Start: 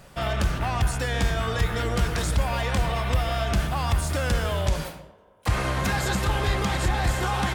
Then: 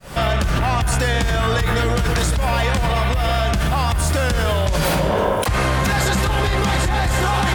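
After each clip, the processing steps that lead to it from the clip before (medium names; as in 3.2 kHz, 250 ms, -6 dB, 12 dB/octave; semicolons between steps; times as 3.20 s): fade-in on the opening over 1.66 s; level flattener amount 100%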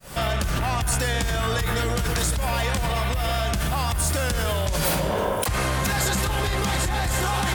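treble shelf 6.4 kHz +10.5 dB; trim -6 dB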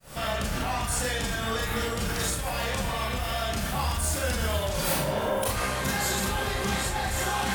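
Schroeder reverb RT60 0.31 s, combs from 28 ms, DRR -3.5 dB; trim -8 dB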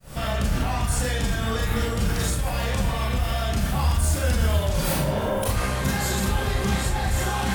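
bass shelf 250 Hz +9.5 dB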